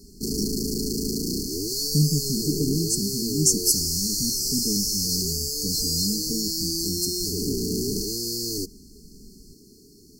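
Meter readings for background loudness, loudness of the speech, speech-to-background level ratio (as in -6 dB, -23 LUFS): -25.5 LUFS, -27.5 LUFS, -2.0 dB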